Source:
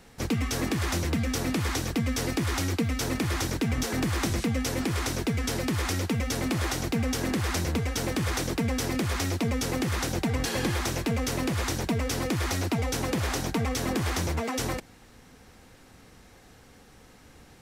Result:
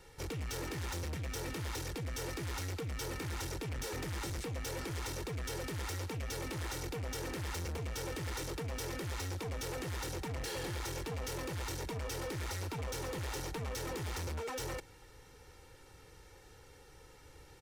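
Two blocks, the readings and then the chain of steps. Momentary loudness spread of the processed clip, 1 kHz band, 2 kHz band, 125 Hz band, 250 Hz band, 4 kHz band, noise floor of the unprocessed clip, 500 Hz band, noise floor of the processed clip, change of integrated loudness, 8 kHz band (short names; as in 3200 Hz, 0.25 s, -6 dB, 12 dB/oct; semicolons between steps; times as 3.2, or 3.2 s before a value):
18 LU, -10.5 dB, -11.0 dB, -10.5 dB, -16.5 dB, -10.5 dB, -54 dBFS, -9.0 dB, -58 dBFS, -11.0 dB, -10.0 dB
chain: comb 2.2 ms, depth 82%; soft clip -30 dBFS, distortion -8 dB; gain -6.5 dB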